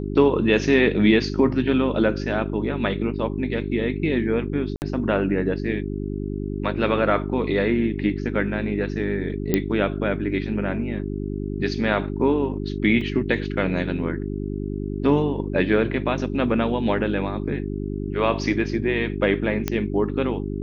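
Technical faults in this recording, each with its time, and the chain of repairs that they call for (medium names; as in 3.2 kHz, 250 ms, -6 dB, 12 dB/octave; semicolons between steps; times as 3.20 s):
hum 50 Hz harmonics 8 -28 dBFS
4.76–4.82 s: dropout 59 ms
9.54 s: pop -6 dBFS
13.01 s: dropout 3.7 ms
19.68 s: pop -8 dBFS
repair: de-click; de-hum 50 Hz, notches 8; interpolate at 4.76 s, 59 ms; interpolate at 13.01 s, 3.7 ms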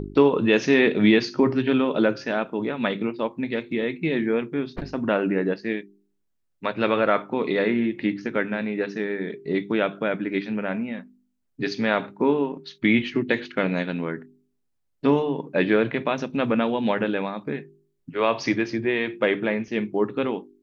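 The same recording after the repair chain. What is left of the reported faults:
nothing left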